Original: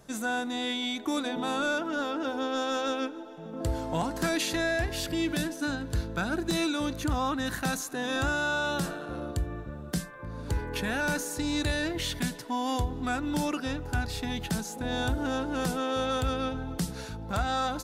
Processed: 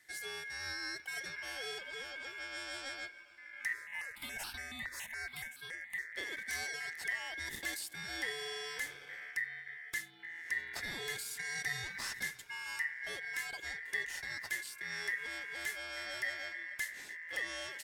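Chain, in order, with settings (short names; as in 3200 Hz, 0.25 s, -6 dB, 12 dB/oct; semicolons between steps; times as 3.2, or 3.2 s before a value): HPF 75 Hz 12 dB/oct; passive tone stack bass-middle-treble 6-0-2; notch 4100 Hz, Q 15; ring modulator 1900 Hz; 3.73–6.15 step phaser 7.1 Hz 790–2000 Hz; gain +11.5 dB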